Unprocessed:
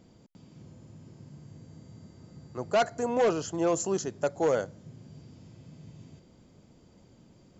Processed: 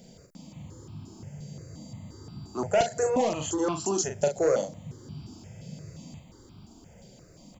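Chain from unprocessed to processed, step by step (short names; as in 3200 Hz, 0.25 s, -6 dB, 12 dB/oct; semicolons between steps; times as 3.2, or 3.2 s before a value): high shelf 5000 Hz +8 dB; compressor 5:1, threshold -28 dBFS, peak gain reduction 7.5 dB; doubler 40 ms -5.5 dB; step phaser 5.7 Hz 310–1900 Hz; gain +8 dB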